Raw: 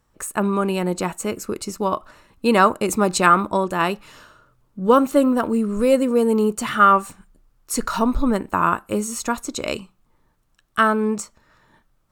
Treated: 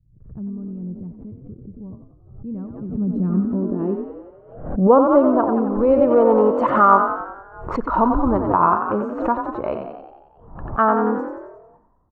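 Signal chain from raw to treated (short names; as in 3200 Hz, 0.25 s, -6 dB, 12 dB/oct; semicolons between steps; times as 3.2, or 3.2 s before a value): 6.01–6.67 overdrive pedal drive 15 dB, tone 5500 Hz, clips at -7.5 dBFS; low-pass opened by the level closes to 880 Hz, open at -16 dBFS; frequency-shifting echo 90 ms, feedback 57%, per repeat +38 Hz, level -6.5 dB; low-pass sweep 120 Hz -> 930 Hz, 2.68–5.15; backwards sustainer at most 84 dB/s; gain -1.5 dB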